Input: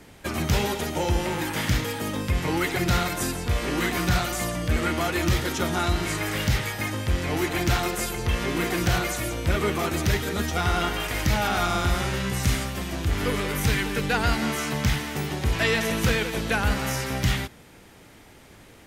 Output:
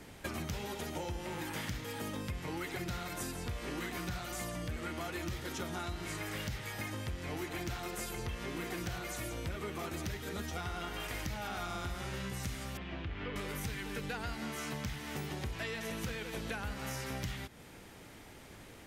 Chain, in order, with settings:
0:12.77–0:13.36: transistor ladder low-pass 3,600 Hz, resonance 30%
downward compressor 6 to 1, threshold −34 dBFS, peak gain reduction 15.5 dB
level −3 dB

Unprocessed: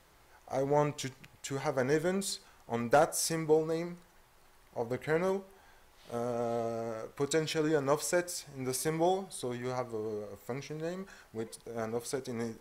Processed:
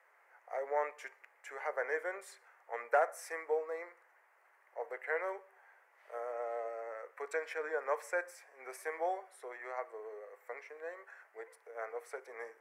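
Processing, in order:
Butterworth high-pass 460 Hz 36 dB per octave
high shelf with overshoot 2,700 Hz −11 dB, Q 3
level −5 dB

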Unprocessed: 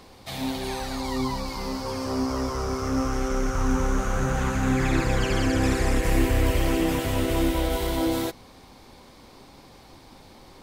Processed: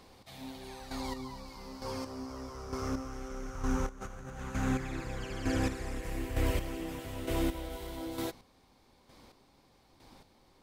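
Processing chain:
square-wave tremolo 1.1 Hz, depth 60%, duty 25%
0:03.89–0:04.40: compressor whose output falls as the input rises −35 dBFS, ratio −0.5
level −7.5 dB

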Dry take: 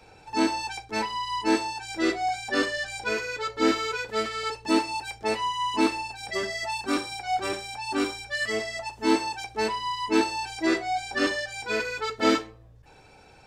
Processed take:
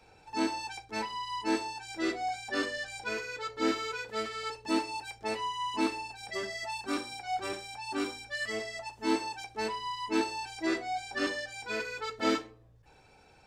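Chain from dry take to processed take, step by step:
hum removal 61.55 Hz, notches 10
level −6.5 dB

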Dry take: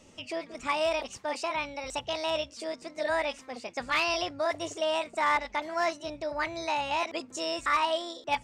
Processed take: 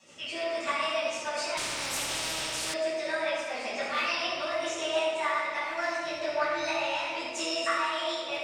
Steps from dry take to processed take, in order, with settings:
loose part that buzzes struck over −51 dBFS, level −37 dBFS
high-pass filter 900 Hz 6 dB per octave
downward compressor, threshold −36 dBFS, peak gain reduction 12 dB
rotating-speaker cabinet horn 7 Hz
delay that swaps between a low-pass and a high-pass 108 ms, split 1,500 Hz, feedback 59%, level −7.5 dB
rectangular room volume 910 cubic metres, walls mixed, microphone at 9.1 metres
0:01.57–0:02.74: every bin compressed towards the loudest bin 4 to 1
level −3.5 dB

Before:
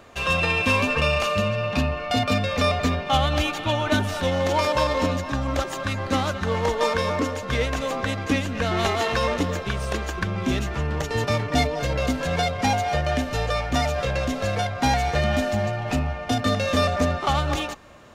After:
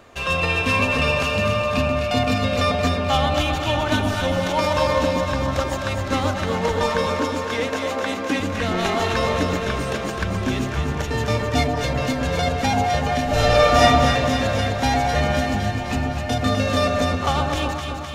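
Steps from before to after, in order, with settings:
0:07.06–0:08.40: high-pass filter 190 Hz 24 dB per octave
0:13.24–0:13.82: thrown reverb, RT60 1.1 s, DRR −9 dB
delay that swaps between a low-pass and a high-pass 128 ms, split 1,100 Hz, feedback 82%, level −4 dB

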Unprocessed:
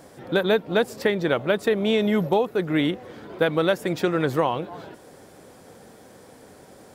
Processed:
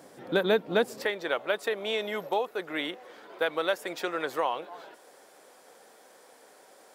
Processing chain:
high-pass filter 180 Hz 12 dB per octave, from 0:01.05 560 Hz
level −3.5 dB

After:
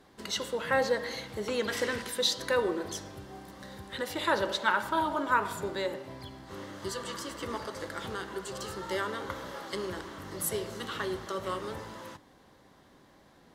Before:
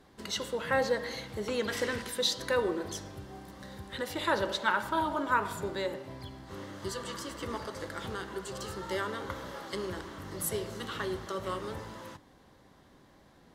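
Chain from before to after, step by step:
low-shelf EQ 150 Hz −5.5 dB
level +1.5 dB

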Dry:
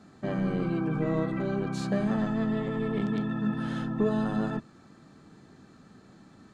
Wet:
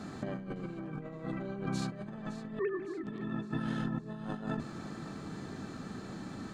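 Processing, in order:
0:02.59–0:03.04: three sine waves on the formant tracks
compressor whose output falls as the input rises −36 dBFS, ratio −0.5
echo with a time of its own for lows and highs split 410 Hz, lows 262 ms, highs 561 ms, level −13.5 dB
level +1 dB

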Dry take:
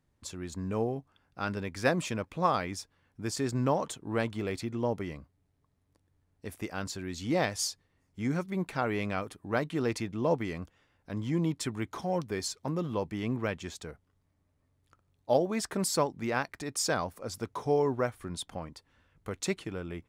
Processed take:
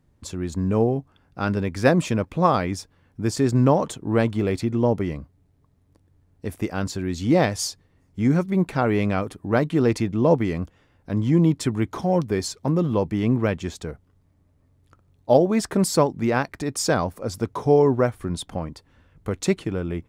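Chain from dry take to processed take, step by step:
tilt shelving filter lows +4 dB, about 680 Hz
level +8.5 dB

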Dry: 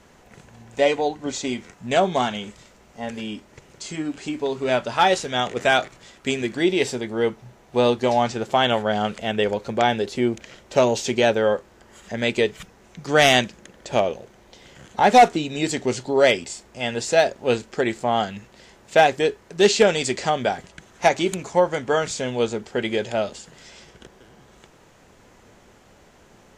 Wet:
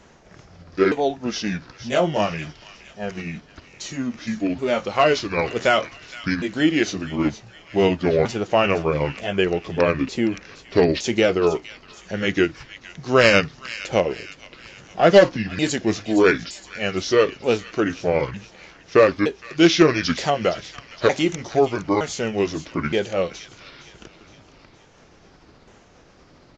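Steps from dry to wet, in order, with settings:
pitch shifter swept by a sawtooth −7.5 semitones, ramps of 917 ms
downsampling to 16,000 Hz
delay with a high-pass on its return 465 ms, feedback 49%, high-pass 2,000 Hz, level −12 dB
level +2 dB

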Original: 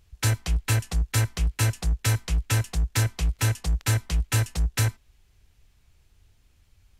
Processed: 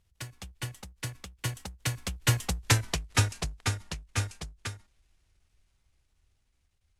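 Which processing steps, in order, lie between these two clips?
variable-slope delta modulation 64 kbit/s
source passing by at 0:02.77, 33 m/s, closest 13 metres
every ending faded ahead of time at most 170 dB per second
level +7.5 dB

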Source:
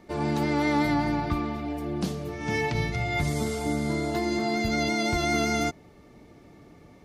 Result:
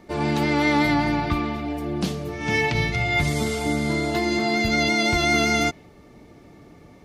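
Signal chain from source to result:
dynamic equaliser 2,800 Hz, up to +6 dB, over −46 dBFS, Q 1
level +3.5 dB

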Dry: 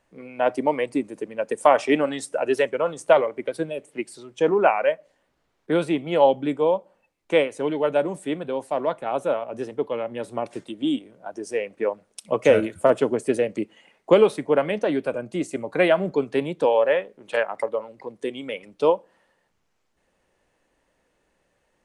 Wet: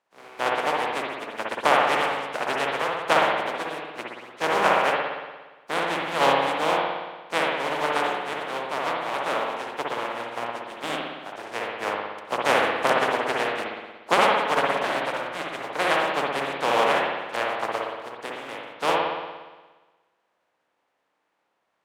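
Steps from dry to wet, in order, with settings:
compressing power law on the bin magnitudes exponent 0.19
resonant band-pass 770 Hz, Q 0.87
spring reverb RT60 1.3 s, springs 58 ms, chirp 35 ms, DRR −2 dB

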